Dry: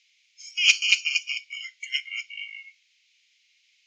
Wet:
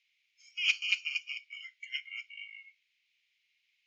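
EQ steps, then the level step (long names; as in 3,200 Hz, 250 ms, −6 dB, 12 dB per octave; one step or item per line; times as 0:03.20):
bass and treble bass +10 dB, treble −14 dB
−7.0 dB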